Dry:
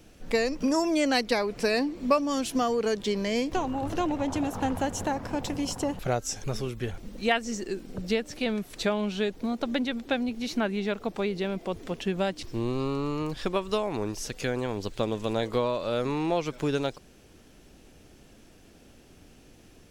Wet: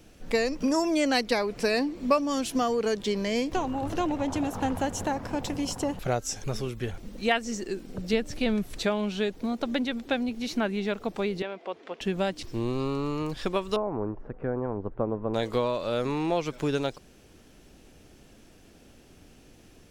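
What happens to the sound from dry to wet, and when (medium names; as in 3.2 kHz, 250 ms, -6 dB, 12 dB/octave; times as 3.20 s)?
8.13–8.79 s: bass shelf 140 Hz +12 dB
11.42–12.01 s: band-pass 480–3200 Hz
13.76–15.34 s: low-pass 1.3 kHz 24 dB/octave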